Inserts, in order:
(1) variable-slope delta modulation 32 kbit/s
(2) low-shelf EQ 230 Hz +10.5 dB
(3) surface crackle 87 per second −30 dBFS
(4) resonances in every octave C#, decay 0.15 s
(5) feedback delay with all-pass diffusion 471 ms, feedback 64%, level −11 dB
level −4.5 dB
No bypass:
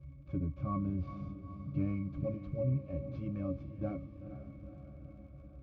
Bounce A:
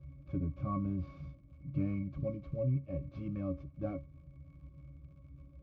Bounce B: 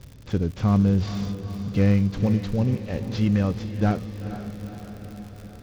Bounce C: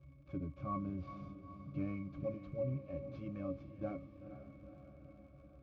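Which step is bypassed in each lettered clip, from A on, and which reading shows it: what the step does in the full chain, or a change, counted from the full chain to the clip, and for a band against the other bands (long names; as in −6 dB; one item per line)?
5, echo-to-direct ratio −8.5 dB to none audible
4, 2 kHz band +8.0 dB
2, 125 Hz band −7.0 dB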